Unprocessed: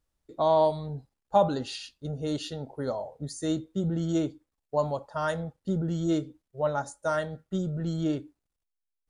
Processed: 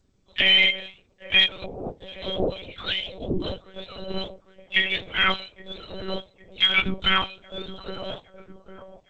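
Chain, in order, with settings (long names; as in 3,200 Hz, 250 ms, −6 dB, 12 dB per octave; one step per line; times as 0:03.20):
frequency axis turned over on the octave scale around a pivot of 1,400 Hz
0:01.46–0:02.08: compressor whose output falls as the input rises −45 dBFS, ratio −1
0:03.00–0:03.65: ring modulation 76 Hz
0:05.45–0:05.87: mains-hum notches 60/120/180/240/300 Hz
delay with a band-pass on its return 812 ms, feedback 51%, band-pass 460 Hz, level −10 dB
one-pitch LPC vocoder at 8 kHz 190 Hz
boost into a limiter +19 dB
level −7 dB
G.722 64 kbit/s 16,000 Hz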